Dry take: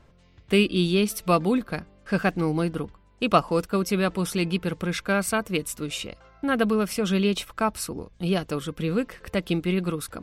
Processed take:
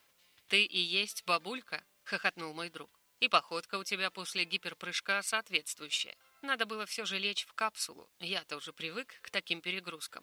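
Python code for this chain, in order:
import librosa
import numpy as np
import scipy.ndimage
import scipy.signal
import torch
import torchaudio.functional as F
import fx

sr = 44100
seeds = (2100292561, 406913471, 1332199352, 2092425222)

y = fx.transient(x, sr, attack_db=3, sustain_db=-5)
y = fx.bandpass_q(y, sr, hz=3900.0, q=0.86)
y = fx.quant_dither(y, sr, seeds[0], bits=12, dither='triangular')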